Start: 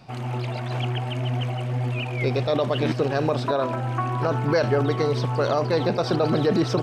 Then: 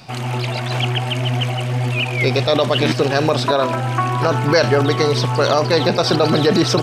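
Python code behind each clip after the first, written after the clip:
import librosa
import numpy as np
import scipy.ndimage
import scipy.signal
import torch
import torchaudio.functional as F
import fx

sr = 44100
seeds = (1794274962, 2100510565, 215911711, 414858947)

y = fx.high_shelf(x, sr, hz=2000.0, db=10.0)
y = y * 10.0 ** (5.5 / 20.0)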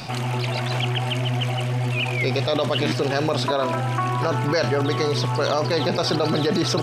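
y = fx.env_flatten(x, sr, amount_pct=50)
y = y * 10.0 ** (-8.0 / 20.0)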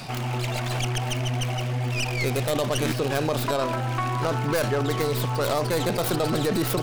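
y = fx.tracing_dist(x, sr, depth_ms=0.27)
y = y * 10.0 ** (-3.0 / 20.0)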